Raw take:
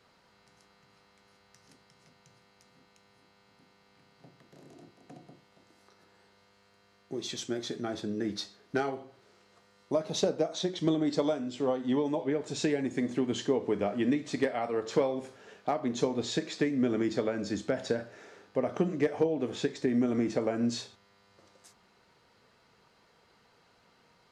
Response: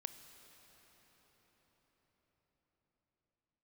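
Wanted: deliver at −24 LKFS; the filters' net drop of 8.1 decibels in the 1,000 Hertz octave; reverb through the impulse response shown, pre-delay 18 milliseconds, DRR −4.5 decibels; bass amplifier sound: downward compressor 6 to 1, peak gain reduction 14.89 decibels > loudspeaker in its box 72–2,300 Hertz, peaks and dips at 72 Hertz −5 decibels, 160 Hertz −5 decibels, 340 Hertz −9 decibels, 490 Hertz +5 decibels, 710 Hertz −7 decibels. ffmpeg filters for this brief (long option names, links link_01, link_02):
-filter_complex "[0:a]equalizer=frequency=1000:width_type=o:gain=-7,asplit=2[link_01][link_02];[1:a]atrim=start_sample=2205,adelay=18[link_03];[link_02][link_03]afir=irnorm=-1:irlink=0,volume=8dB[link_04];[link_01][link_04]amix=inputs=2:normalize=0,acompressor=threshold=-32dB:ratio=6,highpass=frequency=72:width=0.5412,highpass=frequency=72:width=1.3066,equalizer=frequency=72:width_type=q:width=4:gain=-5,equalizer=frequency=160:width_type=q:width=4:gain=-5,equalizer=frequency=340:width_type=q:width=4:gain=-9,equalizer=frequency=490:width_type=q:width=4:gain=5,equalizer=frequency=710:width_type=q:width=4:gain=-7,lowpass=frequency=2300:width=0.5412,lowpass=frequency=2300:width=1.3066,volume=14.5dB"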